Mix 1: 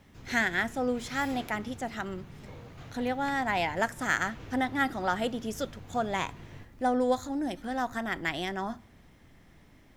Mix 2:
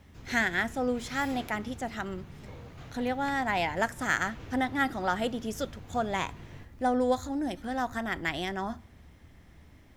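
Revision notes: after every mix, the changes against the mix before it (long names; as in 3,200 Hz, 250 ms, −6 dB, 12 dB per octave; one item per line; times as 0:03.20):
speech: add parametric band 73 Hz +10 dB 0.66 octaves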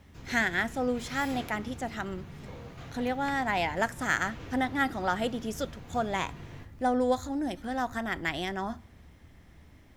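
background: send +11.5 dB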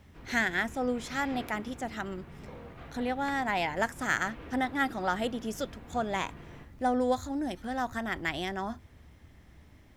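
speech: send off
background: add band-pass filter 170–2,600 Hz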